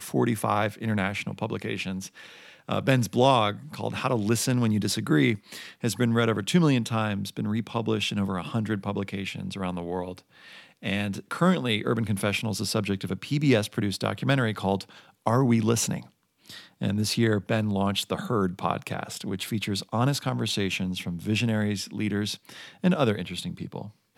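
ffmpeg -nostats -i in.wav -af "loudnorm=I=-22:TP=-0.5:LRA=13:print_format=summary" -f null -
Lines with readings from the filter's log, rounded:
Input Integrated:    -26.9 LUFS
Input True Peak:      -6.5 dBTP
Input LRA:             3.9 LU
Input Threshold:     -37.3 LUFS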